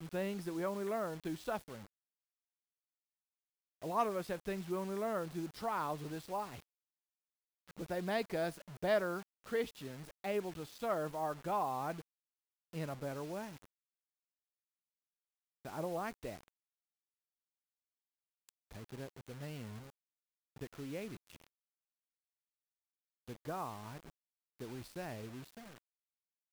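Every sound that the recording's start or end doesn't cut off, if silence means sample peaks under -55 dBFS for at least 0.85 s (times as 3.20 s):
3.82–6.62 s
7.68–13.65 s
15.65–16.48 s
18.49–21.47 s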